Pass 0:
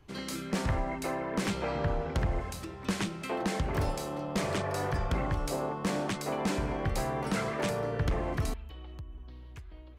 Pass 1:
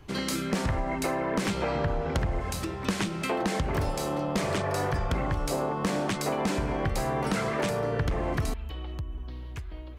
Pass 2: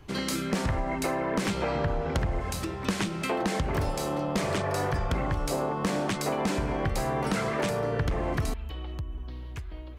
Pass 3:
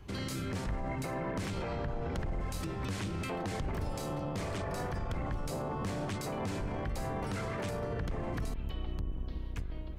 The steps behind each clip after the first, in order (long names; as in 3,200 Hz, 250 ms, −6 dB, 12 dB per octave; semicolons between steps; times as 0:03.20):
downward compressor 4 to 1, threshold −34 dBFS, peak gain reduction 8 dB; level +8.5 dB
no processing that can be heard
sub-octave generator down 1 octave, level +2 dB; brickwall limiter −25 dBFS, peak gain reduction 9.5 dB; level −3.5 dB